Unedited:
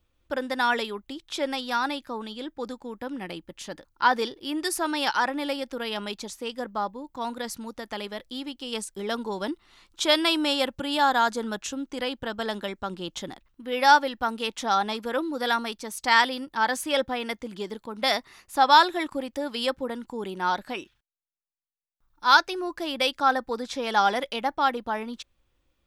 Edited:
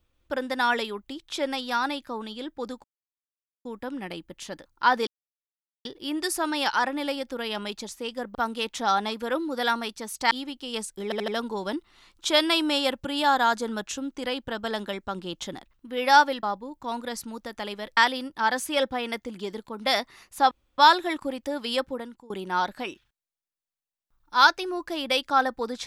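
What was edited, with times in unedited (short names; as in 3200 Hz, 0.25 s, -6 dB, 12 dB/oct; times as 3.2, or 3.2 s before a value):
2.84 insert silence 0.81 s
4.26 insert silence 0.78 s
6.76–8.3 swap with 14.18–16.14
9.03 stutter 0.08 s, 4 plays
18.68 insert room tone 0.27 s
19.76–20.2 fade out, to -23 dB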